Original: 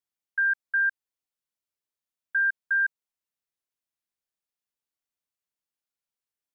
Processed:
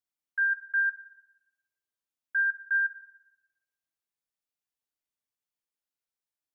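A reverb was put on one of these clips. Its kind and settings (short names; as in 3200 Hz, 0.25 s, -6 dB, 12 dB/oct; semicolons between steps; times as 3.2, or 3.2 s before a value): FDN reverb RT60 0.97 s, low-frequency decay 1.1×, high-frequency decay 0.8×, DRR 9 dB; gain -3.5 dB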